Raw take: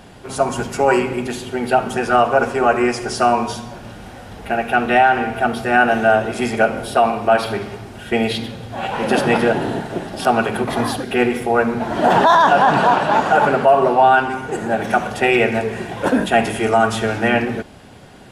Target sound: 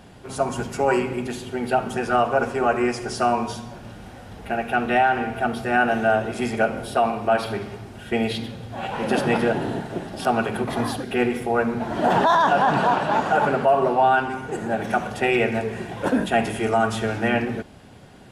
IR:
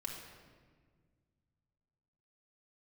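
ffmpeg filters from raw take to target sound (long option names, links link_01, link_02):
-af "equalizer=frequency=110:width_type=o:width=3:gain=3,volume=-6dB"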